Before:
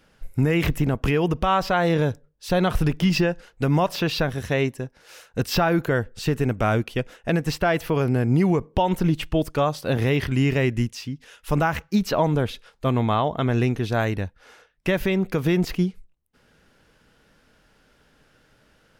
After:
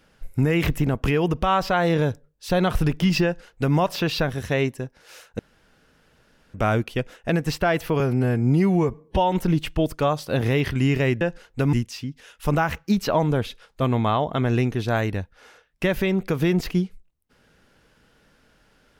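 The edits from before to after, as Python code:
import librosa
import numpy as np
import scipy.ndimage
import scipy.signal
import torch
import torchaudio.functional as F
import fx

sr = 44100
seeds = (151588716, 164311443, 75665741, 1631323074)

y = fx.edit(x, sr, fx.duplicate(start_s=3.24, length_s=0.52, to_s=10.77),
    fx.room_tone_fill(start_s=5.39, length_s=1.15),
    fx.stretch_span(start_s=8.0, length_s=0.88, factor=1.5), tone=tone)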